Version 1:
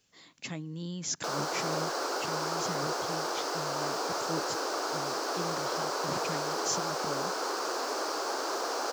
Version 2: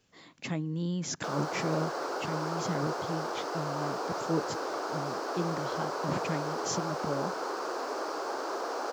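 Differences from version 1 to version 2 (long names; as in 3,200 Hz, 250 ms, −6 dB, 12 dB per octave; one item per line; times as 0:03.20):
speech +6.0 dB
master: add high-shelf EQ 2,700 Hz −11 dB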